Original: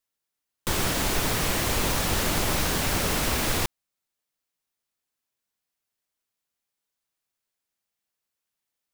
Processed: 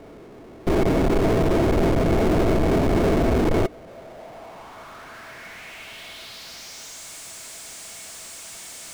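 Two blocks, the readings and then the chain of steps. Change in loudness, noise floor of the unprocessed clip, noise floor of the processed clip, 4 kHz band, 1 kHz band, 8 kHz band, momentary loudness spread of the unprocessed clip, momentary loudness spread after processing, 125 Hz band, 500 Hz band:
+4.0 dB, −85 dBFS, −43 dBFS, −6.5 dB, +3.0 dB, −6.5 dB, 4 LU, 18 LU, +7.0 dB, +11.5 dB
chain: low-pass filter sweep 390 Hz → 8,100 Hz, 0:03.60–0:07.10
power curve on the samples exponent 0.35
hollow resonant body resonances 660/2,200 Hz, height 11 dB, ringing for 90 ms

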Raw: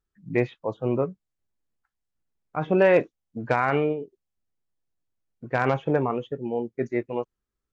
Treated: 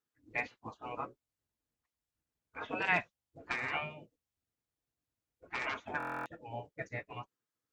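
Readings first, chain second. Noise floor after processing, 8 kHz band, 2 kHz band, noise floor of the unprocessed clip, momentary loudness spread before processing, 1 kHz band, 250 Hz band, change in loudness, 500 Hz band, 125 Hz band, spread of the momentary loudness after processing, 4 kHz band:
below −85 dBFS, can't be measured, −4.5 dB, −85 dBFS, 13 LU, −10.5 dB, −20.5 dB, −12.5 dB, −21.5 dB, −18.5 dB, 17 LU, −2.5 dB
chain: gate on every frequency bin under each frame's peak −15 dB weak
notch comb filter 190 Hz
buffer that repeats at 0:05.98, samples 1,024, times 11

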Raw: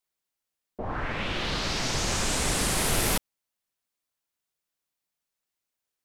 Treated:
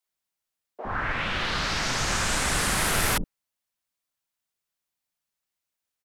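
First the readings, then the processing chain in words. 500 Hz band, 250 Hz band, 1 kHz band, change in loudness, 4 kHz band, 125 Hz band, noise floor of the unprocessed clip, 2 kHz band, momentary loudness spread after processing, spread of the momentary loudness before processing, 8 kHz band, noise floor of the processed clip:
−1.0 dB, −1.0 dB, +3.5 dB, +1.5 dB, +1.0 dB, 0.0 dB, below −85 dBFS, +5.0 dB, 8 LU, 8 LU, 0.0 dB, below −85 dBFS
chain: dynamic equaliser 1,500 Hz, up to +7 dB, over −46 dBFS, Q 1.2
multiband delay without the direct sound highs, lows 60 ms, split 380 Hz

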